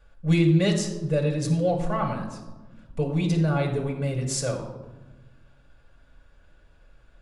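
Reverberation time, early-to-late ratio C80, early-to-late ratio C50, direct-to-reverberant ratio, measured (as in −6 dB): 1.2 s, 9.5 dB, 7.0 dB, 1.0 dB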